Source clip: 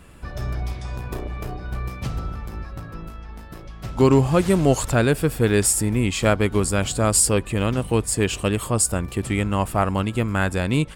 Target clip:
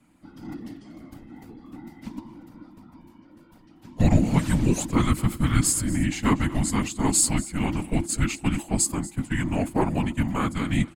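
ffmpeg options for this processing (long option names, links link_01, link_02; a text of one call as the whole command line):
ffmpeg -i in.wav -filter_complex "[0:a]agate=range=-11dB:threshold=-24dB:ratio=16:detection=peak,afftfilt=real='hypot(re,im)*cos(2*PI*random(0))':imag='hypot(re,im)*sin(2*PI*random(1))':win_size=512:overlap=0.75,afreqshift=-350,asplit=2[link_01][link_02];[link_02]aecho=0:1:238:0.126[link_03];[link_01][link_03]amix=inputs=2:normalize=0,volume=3dB" out.wav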